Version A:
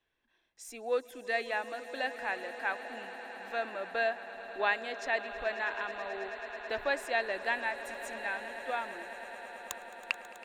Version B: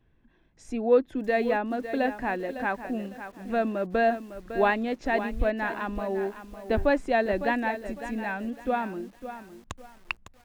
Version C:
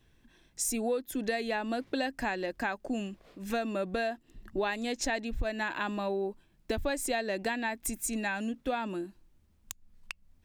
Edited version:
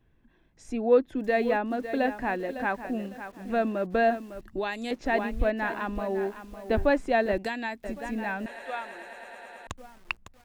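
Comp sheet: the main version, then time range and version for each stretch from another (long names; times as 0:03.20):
B
0:04.41–0:04.91: punch in from C
0:07.38–0:07.84: punch in from C
0:08.46–0:09.67: punch in from A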